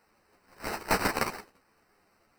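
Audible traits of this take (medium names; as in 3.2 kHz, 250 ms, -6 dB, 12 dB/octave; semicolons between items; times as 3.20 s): aliases and images of a low sample rate 3.4 kHz, jitter 0%; a shimmering, thickened sound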